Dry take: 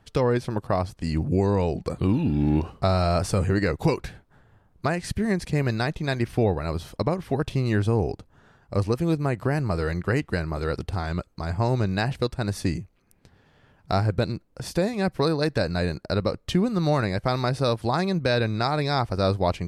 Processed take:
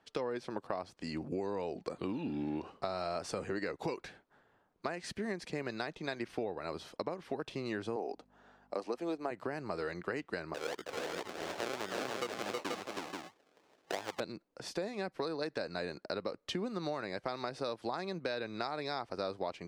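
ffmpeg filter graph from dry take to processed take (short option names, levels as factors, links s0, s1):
-filter_complex "[0:a]asettb=1/sr,asplit=3[s0][s1][s2];[s0]atrim=end=7.964[s3];[s1]atrim=start=7.96:end=9.31,asetpts=PTS-STARTPTS,afade=t=in:d=0.004:c=qsin,afade=t=out:st=1.346:d=0.004:c=qsin,highpass=f=210:w=0.5412,highpass=f=210:w=1.3066,aeval=exprs='val(0)+0.00398*(sin(2*PI*50*n/s)+sin(2*PI*2*50*n/s)/2+sin(2*PI*3*50*n/s)/3+sin(2*PI*4*50*n/s)/4+sin(2*PI*5*50*n/s)/5)':c=same,equalizer=f=730:w=2.2:g=6[s4];[s2]atrim=start=9.306[s5];[s3][s4]acrossfade=d=0.004:c1=hsin:c2=qsin[s6];[s6][s5]acrossfade=d=0.004:c1=qsin:c2=hsin,asettb=1/sr,asplit=3[s7][s8][s9];[s7]atrim=end=10.544[s10];[s8]atrim=start=10.54:end=14.2,asetpts=PTS-STARTPTS,afade=t=in:d=0.004:c=qsin,afade=t=out:st=3.656:d=0.004:c=qsin,acrusher=samples=37:mix=1:aa=0.000001:lfo=1:lforange=22.2:lforate=2.8,bass=f=250:g=-11,treble=f=4000:g=1,aecho=1:1:319|482:0.631|0.531,atrim=end_sample=161406[s11];[s9]atrim=start=14.196[s12];[s10][s11]acrossfade=d=0.004:c1=hsin:c2=qsin[s13];[s13][s12]acrossfade=d=0.004:c1=qsin:c2=hsin,acrossover=split=230 7600:gain=0.0891 1 0.224[s14][s15][s16];[s14][s15][s16]amix=inputs=3:normalize=0,acompressor=threshold=0.0447:ratio=6,volume=0.501"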